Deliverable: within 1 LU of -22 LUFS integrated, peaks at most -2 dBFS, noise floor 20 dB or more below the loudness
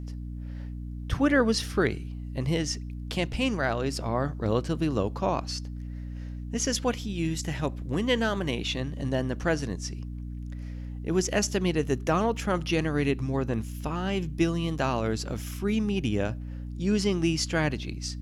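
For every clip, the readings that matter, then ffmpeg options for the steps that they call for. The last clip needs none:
hum 60 Hz; highest harmonic 300 Hz; hum level -34 dBFS; loudness -29.0 LUFS; peak level -11.0 dBFS; loudness target -22.0 LUFS
-> -af "bandreject=f=60:t=h:w=6,bandreject=f=120:t=h:w=6,bandreject=f=180:t=h:w=6,bandreject=f=240:t=h:w=6,bandreject=f=300:t=h:w=6"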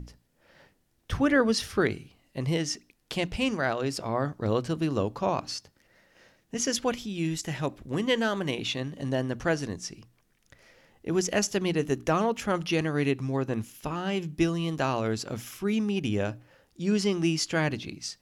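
hum not found; loudness -29.0 LUFS; peak level -11.0 dBFS; loudness target -22.0 LUFS
-> -af "volume=2.24"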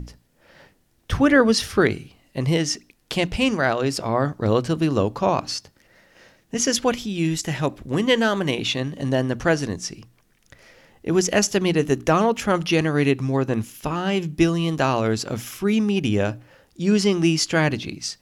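loudness -22.0 LUFS; peak level -4.0 dBFS; noise floor -62 dBFS

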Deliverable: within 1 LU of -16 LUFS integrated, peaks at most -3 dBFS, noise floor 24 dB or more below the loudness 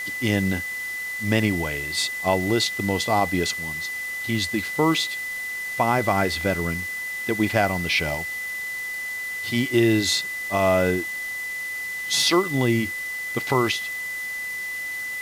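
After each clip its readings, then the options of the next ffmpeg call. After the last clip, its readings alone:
steady tone 2 kHz; tone level -28 dBFS; noise floor -31 dBFS; noise floor target -48 dBFS; loudness -23.5 LUFS; peak level -6.5 dBFS; loudness target -16.0 LUFS
-> -af "bandreject=f=2000:w=30"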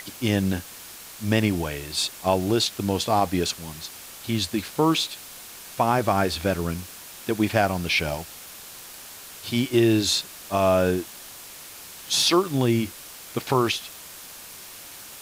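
steady tone not found; noise floor -42 dBFS; noise floor target -48 dBFS
-> -af "afftdn=nr=6:nf=-42"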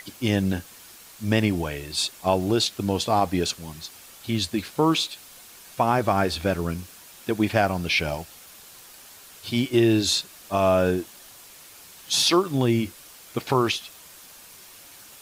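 noise floor -47 dBFS; noise floor target -48 dBFS
-> -af "afftdn=nr=6:nf=-47"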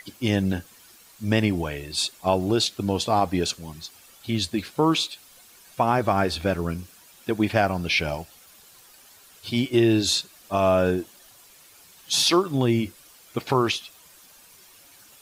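noise floor -52 dBFS; loudness -24.0 LUFS; peak level -7.0 dBFS; loudness target -16.0 LUFS
-> -af "volume=2.51,alimiter=limit=0.708:level=0:latency=1"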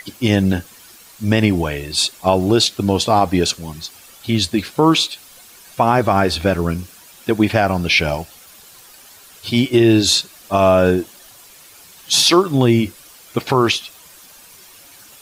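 loudness -16.5 LUFS; peak level -3.0 dBFS; noise floor -44 dBFS

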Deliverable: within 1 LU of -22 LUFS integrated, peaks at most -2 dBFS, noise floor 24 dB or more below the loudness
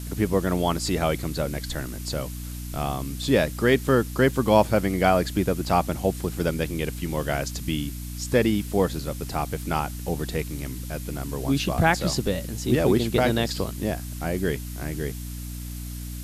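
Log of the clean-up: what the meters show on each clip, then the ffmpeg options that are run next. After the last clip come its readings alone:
hum 60 Hz; highest harmonic 300 Hz; hum level -32 dBFS; noise floor -34 dBFS; noise floor target -49 dBFS; loudness -25.0 LUFS; peak level -4.0 dBFS; loudness target -22.0 LUFS
-> -af "bandreject=f=60:t=h:w=6,bandreject=f=120:t=h:w=6,bandreject=f=180:t=h:w=6,bandreject=f=240:t=h:w=6,bandreject=f=300:t=h:w=6"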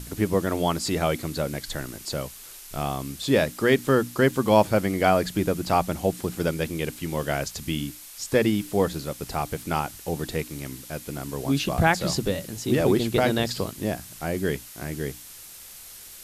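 hum not found; noise floor -44 dBFS; noise floor target -50 dBFS
-> -af "afftdn=nr=6:nf=-44"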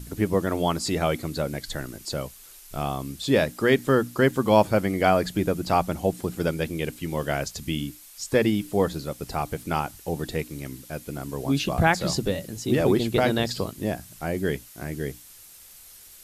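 noise floor -48 dBFS; noise floor target -50 dBFS
-> -af "afftdn=nr=6:nf=-48"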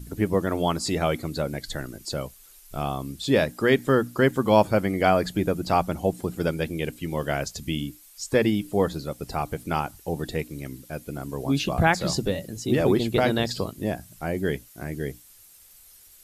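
noise floor -52 dBFS; loudness -25.5 LUFS; peak level -4.5 dBFS; loudness target -22.0 LUFS
-> -af "volume=1.5,alimiter=limit=0.794:level=0:latency=1"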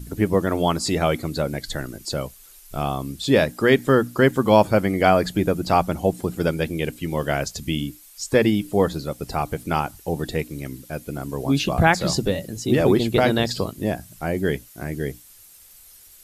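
loudness -22.0 LUFS; peak level -2.0 dBFS; noise floor -48 dBFS

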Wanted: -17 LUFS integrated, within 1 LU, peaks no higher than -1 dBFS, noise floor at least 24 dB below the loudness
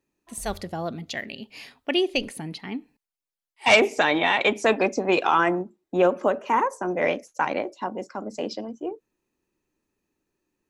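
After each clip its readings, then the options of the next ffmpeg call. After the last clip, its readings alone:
loudness -24.0 LUFS; peak level -4.0 dBFS; loudness target -17.0 LUFS
-> -af "volume=2.24,alimiter=limit=0.891:level=0:latency=1"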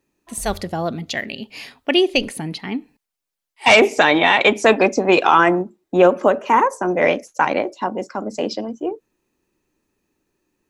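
loudness -17.5 LUFS; peak level -1.0 dBFS; noise floor -82 dBFS

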